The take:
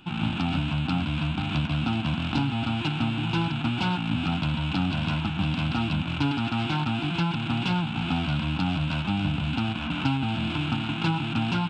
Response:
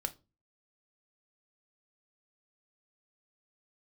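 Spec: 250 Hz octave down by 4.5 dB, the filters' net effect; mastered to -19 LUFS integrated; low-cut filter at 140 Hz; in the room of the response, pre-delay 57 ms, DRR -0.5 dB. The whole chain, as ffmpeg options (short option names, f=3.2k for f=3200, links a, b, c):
-filter_complex "[0:a]highpass=140,equalizer=f=250:t=o:g=-5,asplit=2[a][b];[1:a]atrim=start_sample=2205,adelay=57[c];[b][c]afir=irnorm=-1:irlink=0,volume=-0.5dB[d];[a][d]amix=inputs=2:normalize=0,volume=8dB"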